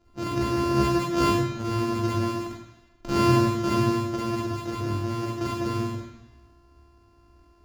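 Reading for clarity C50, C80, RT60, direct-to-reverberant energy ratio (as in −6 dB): −0.5 dB, 3.5 dB, 1.0 s, −4.0 dB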